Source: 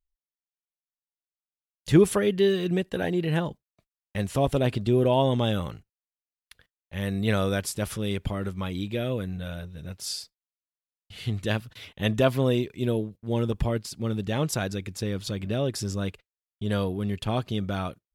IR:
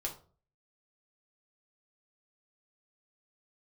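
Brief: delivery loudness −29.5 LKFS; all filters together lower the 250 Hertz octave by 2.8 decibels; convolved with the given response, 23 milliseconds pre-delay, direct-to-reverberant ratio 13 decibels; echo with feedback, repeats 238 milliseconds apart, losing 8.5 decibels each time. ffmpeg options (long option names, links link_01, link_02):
-filter_complex "[0:a]equalizer=frequency=250:width_type=o:gain=-4,aecho=1:1:238|476|714|952:0.376|0.143|0.0543|0.0206,asplit=2[link_01][link_02];[1:a]atrim=start_sample=2205,adelay=23[link_03];[link_02][link_03]afir=irnorm=-1:irlink=0,volume=-14dB[link_04];[link_01][link_04]amix=inputs=2:normalize=0,volume=-1.5dB"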